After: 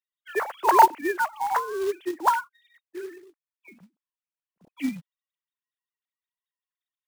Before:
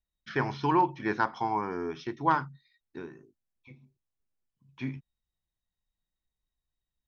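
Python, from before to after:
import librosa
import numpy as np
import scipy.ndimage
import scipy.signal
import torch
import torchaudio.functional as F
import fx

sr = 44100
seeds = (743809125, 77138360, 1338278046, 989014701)

y = fx.sine_speech(x, sr)
y = fx.quant_float(y, sr, bits=2)
y = y * 10.0 ** (6.0 / 20.0)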